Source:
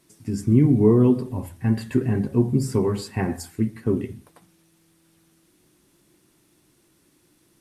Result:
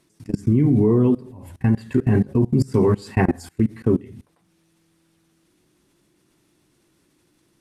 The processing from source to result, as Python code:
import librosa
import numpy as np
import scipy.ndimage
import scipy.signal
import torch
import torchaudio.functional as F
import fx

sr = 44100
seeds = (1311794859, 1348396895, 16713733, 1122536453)

y = fx.high_shelf(x, sr, hz=11000.0, db=-11.5)
y = fx.level_steps(y, sr, step_db=24)
y = F.gain(torch.from_numpy(y), 8.5).numpy()